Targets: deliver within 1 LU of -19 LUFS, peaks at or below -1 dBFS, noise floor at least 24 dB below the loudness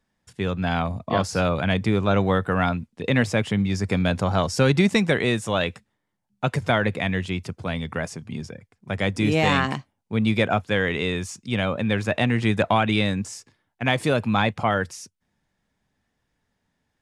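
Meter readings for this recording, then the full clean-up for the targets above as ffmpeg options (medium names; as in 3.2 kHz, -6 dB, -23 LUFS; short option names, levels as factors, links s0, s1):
loudness -23.5 LUFS; peak level -7.5 dBFS; loudness target -19.0 LUFS
-> -af "volume=1.68"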